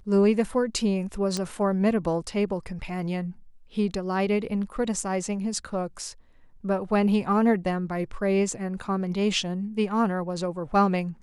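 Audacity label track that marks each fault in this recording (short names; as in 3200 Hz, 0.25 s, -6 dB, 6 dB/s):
1.370000	1.370000	pop -15 dBFS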